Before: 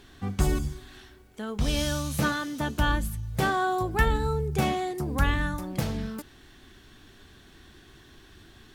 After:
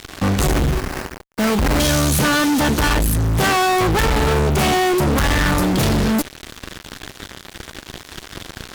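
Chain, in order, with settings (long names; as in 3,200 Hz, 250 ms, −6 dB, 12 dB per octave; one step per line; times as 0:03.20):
0:00.53–0:01.80: sample-rate reduction 3,500 Hz, jitter 20%
fuzz pedal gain 45 dB, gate −48 dBFS
level −2 dB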